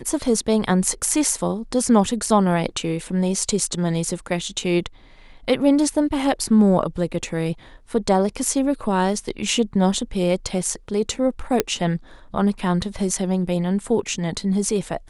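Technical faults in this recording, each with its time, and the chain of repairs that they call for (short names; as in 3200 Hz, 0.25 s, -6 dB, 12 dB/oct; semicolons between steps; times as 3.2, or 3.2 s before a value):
11.6 pop -3 dBFS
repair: de-click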